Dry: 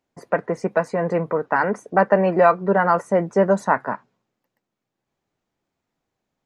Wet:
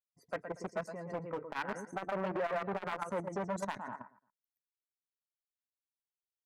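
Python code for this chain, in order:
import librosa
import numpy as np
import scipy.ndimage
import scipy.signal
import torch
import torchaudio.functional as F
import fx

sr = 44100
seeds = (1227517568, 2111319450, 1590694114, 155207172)

y = fx.bin_expand(x, sr, power=1.5)
y = fx.high_shelf(y, sr, hz=5400.0, db=4.5)
y = fx.echo_feedback(y, sr, ms=117, feedback_pct=23, wet_db=-7.5)
y = fx.level_steps(y, sr, step_db=12)
y = np.clip(y, -10.0 ** (-20.0 / 20.0), 10.0 ** (-20.0 / 20.0))
y = fx.notch(y, sr, hz=460.0, q=12.0)
y = fx.transformer_sat(y, sr, knee_hz=810.0)
y = y * librosa.db_to_amplitude(-6.0)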